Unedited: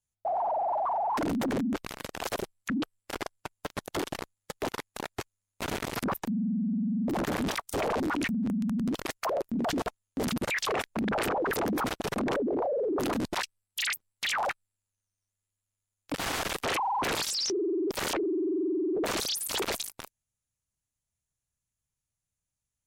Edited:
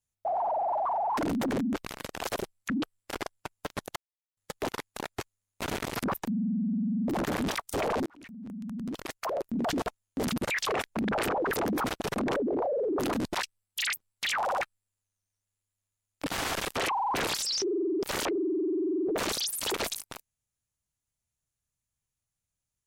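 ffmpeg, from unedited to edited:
-filter_complex "[0:a]asplit=6[a][b][c][d][e][f];[a]atrim=end=3.96,asetpts=PTS-STARTPTS,afade=t=out:st=3.956:d=0.004:c=hsin[g];[b]atrim=start=3.96:end=4.37,asetpts=PTS-STARTPTS,volume=0[h];[c]atrim=start=4.37:end=8.06,asetpts=PTS-STARTPTS,afade=t=in:d=0.004:c=hsin,afade=t=out:st=3.686:d=0.004:c=hsin[i];[d]atrim=start=8.06:end=14.482,asetpts=PTS-STARTPTS,afade=t=in:d=1.59[j];[e]atrim=start=14.418:end=14.482[k];[f]atrim=start=14.418[l];[g][h][i][j]concat=n=4:v=0:a=1[m];[m][k]acrossfade=d=0.004:c1=hsin:c2=hsin[n];[n][l]acrossfade=d=0.004:c1=hsin:c2=hsin"

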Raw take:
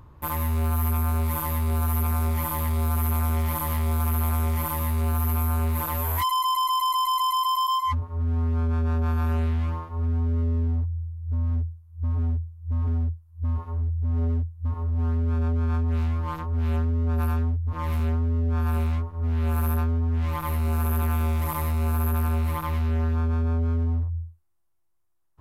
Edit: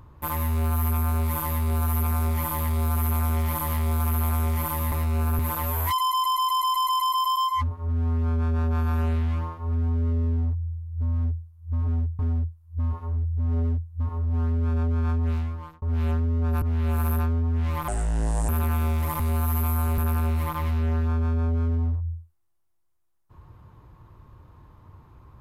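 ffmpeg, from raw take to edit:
-filter_complex "[0:a]asplit=10[a][b][c][d][e][f][g][h][i][j];[a]atrim=end=4.922[k];[b]atrim=start=21.588:end=22.062[l];[c]atrim=start=5.698:end=12.502[m];[d]atrim=start=12.838:end=16.47,asetpts=PTS-STARTPTS,afade=t=out:st=3.092:d=0.54[n];[e]atrim=start=16.47:end=17.272,asetpts=PTS-STARTPTS,afade=t=in:d=0.004:c=hsin[o];[f]atrim=start=19.198:end=20.464[p];[g]atrim=start=20.46:end=20.88,asetpts=PTS-STARTPTS,asetrate=30429,aresample=44100,atrim=end_sample=26843,asetpts=PTS-STARTPTS[q];[h]atrim=start=20.876:end=21.592[r];[i]atrim=start=4.918:end=5.702[s];[j]atrim=start=22.058[t];[k][l]acrossfade=d=0.004:c1=hsin:c2=hsin[u];[u][m]acrossfade=d=0.004:c1=hsin:c2=hsin[v];[n][o]concat=n=2:v=0:a=1[w];[v][w]acrossfade=d=0.004:c1=hsin:c2=hsin[x];[x][p]acrossfade=d=0.004:c1=hsin:c2=hsin[y];[y][q]acrossfade=d=0.004:c1=hsin:c2=hsin[z];[z][r]acrossfade=d=0.004:c1=hsin:c2=hsin[aa];[aa][s]acrossfade=d=0.004:c1=hsin:c2=hsin[ab];[ab][t]acrossfade=d=0.004:c1=hsin:c2=hsin"

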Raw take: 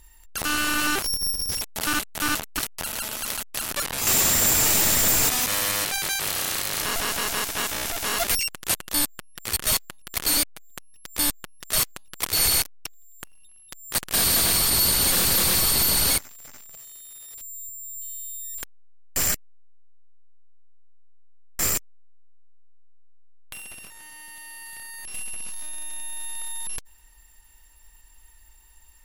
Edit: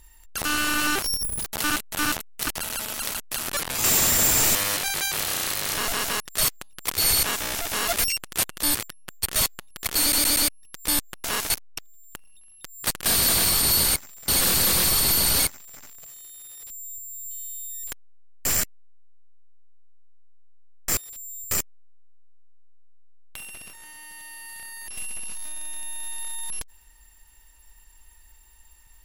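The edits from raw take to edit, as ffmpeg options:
-filter_complex "[0:a]asplit=20[a][b][c][d][e][f][g][h][i][j][k][l][m][n][o][p][q][r][s][t];[a]atrim=end=1.234[u];[b]atrim=start=1.23:end=1.75,asetpts=PTS-STARTPTS,asetrate=78939,aresample=44100,atrim=end_sample=12811,asetpts=PTS-STARTPTS[v];[c]atrim=start=1.746:end=2.522[w];[d]atrim=start=2.518:end=2.772,asetpts=PTS-STARTPTS,areverse[x];[e]atrim=start=2.768:end=4.782[y];[f]atrim=start=5.628:end=7.282[z];[g]atrim=start=11.548:end=12.582[aa];[h]atrim=start=7.538:end=9.052[ab];[i]atrim=start=9.048:end=9.542,asetpts=PTS-STARTPTS,areverse[ac];[j]atrim=start=9.538:end=10.442[ad];[k]atrim=start=10.318:end=10.442[ae];[l]atrim=start=10.318:end=10.442[af];[m]atrim=start=10.318:end=10.442[ag];[n]atrim=start=10.798:end=11.552[ah];[o]atrim=start=7.278:end=7.542[ai];[p]atrim=start=12.578:end=14.992[aj];[q]atrim=start=16.128:end=16.502[ak];[r]atrim=start=14.988:end=21.682[al];[s]atrim=start=17.218:end=17.762[am];[t]atrim=start=21.678[an];[u][v]acrossfade=d=0.004:c1=hsin:c2=hsin[ao];[ao][w]acrossfade=d=0.004:c1=hsin:c2=hsin[ap];[ap][x]acrossfade=d=0.004:c1=hsin:c2=hsin[aq];[aq][y]acrossfade=d=0.004:c1=hsin:c2=hsin[ar];[ar][z]acrossfade=d=0.004:c1=hsin:c2=hsin[as];[as][aa]acrossfade=d=0.004:c1=hsin:c2=hsin[at];[at][ab]acrossfade=d=0.004:c1=hsin:c2=hsin[au];[au][ac]acrossfade=d=0.004:c1=hsin:c2=hsin[av];[av][ad]acrossfade=d=0.004:c1=hsin:c2=hsin[aw];[aw][ae]acrossfade=d=0.004:c1=hsin:c2=hsin[ax];[ax][af]acrossfade=d=0.004:c1=hsin:c2=hsin[ay];[ay][ag]acrossfade=d=0.004:c1=hsin:c2=hsin[az];[az][ah]acrossfade=d=0.004:c1=hsin:c2=hsin[ba];[ba][ai]acrossfade=d=0.004:c1=hsin:c2=hsin[bb];[bb][aj]acrossfade=d=0.004:c1=hsin:c2=hsin[bc];[bc][ak]acrossfade=d=0.004:c1=hsin:c2=hsin[bd];[bd][al]acrossfade=d=0.004:c1=hsin:c2=hsin[be];[be][am]acrossfade=d=0.004:c1=hsin:c2=hsin[bf];[bf][an]acrossfade=d=0.004:c1=hsin:c2=hsin"

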